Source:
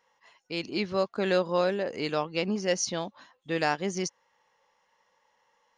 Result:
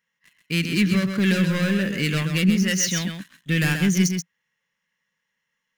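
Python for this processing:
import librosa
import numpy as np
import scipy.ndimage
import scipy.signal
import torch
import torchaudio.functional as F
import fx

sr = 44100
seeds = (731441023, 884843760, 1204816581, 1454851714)

y = fx.low_shelf(x, sr, hz=380.0, db=-8.0, at=(2.5, 3.07))
y = fx.leveller(y, sr, passes=3)
y = fx.curve_eq(y, sr, hz=(100.0, 170.0, 310.0, 810.0, 1700.0, 3000.0, 4700.0, 11000.0), db=(0, 11, -4, -18, 4, 3, -3, 8))
y = y + 10.0 ** (-6.5 / 20.0) * np.pad(y, (int(131 * sr / 1000.0), 0))[:len(y)]
y = y * 10.0 ** (-1.5 / 20.0)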